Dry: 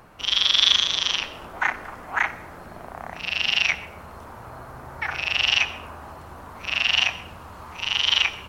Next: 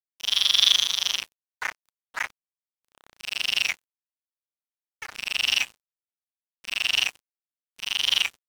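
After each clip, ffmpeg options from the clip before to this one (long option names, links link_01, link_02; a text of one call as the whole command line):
ffmpeg -i in.wav -af "crystalizer=i=5:c=0,aeval=exprs='sgn(val(0))*max(abs(val(0))-0.0794,0)':channel_layout=same,volume=-9dB" out.wav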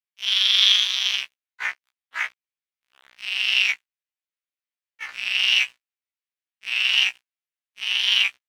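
ffmpeg -i in.wav -af "equalizer=frequency=2300:width=0.61:gain=15,afftfilt=real='re*1.73*eq(mod(b,3),0)':imag='im*1.73*eq(mod(b,3),0)':win_size=2048:overlap=0.75,volume=-6.5dB" out.wav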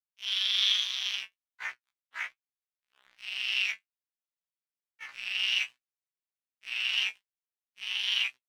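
ffmpeg -i in.wav -af "flanger=delay=7.8:depth=3.1:regen=51:speed=1.2:shape=sinusoidal,volume=-5.5dB" out.wav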